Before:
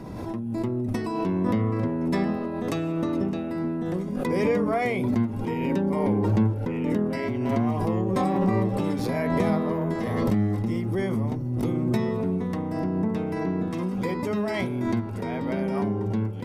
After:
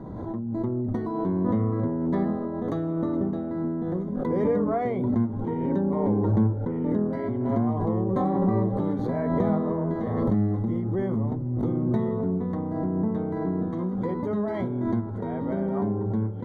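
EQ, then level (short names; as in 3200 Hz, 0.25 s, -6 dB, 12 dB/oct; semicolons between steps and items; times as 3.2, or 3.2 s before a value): running mean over 17 samples; 0.0 dB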